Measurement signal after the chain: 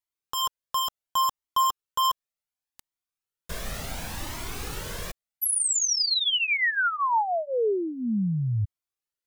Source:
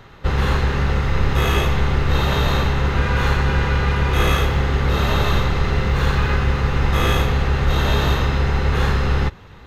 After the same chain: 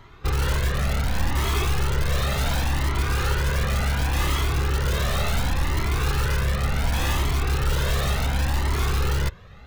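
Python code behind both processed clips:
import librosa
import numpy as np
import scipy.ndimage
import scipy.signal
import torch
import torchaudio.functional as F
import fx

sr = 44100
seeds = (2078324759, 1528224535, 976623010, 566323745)

p1 = (np.mod(10.0 ** (13.5 / 20.0) * x + 1.0, 2.0) - 1.0) / 10.0 ** (13.5 / 20.0)
p2 = x + (p1 * 10.0 ** (-4.0 / 20.0))
p3 = fx.comb_cascade(p2, sr, direction='rising', hz=0.69)
y = p3 * 10.0 ** (-4.5 / 20.0)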